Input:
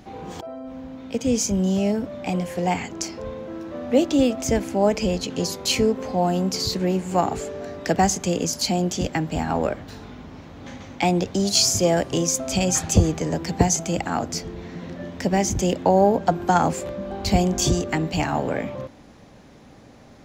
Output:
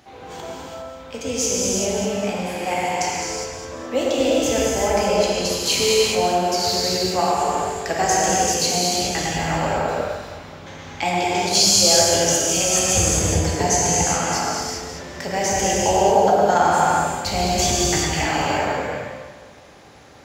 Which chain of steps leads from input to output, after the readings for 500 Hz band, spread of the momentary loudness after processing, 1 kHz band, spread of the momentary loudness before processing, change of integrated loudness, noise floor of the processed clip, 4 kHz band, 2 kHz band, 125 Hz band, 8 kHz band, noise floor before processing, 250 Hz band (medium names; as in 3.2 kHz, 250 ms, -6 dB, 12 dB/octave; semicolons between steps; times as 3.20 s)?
+3.0 dB, 16 LU, +5.5 dB, 16 LU, +3.5 dB, -41 dBFS, +6.5 dB, +7.0 dB, -2.0 dB, +7.0 dB, -48 dBFS, -3.5 dB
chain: high-pass 70 Hz; peaking EQ 200 Hz -12.5 dB 2.3 oct; echo whose repeats swap between lows and highs 105 ms, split 2.2 kHz, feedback 61%, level -3.5 dB; gated-style reverb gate 430 ms flat, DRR -5 dB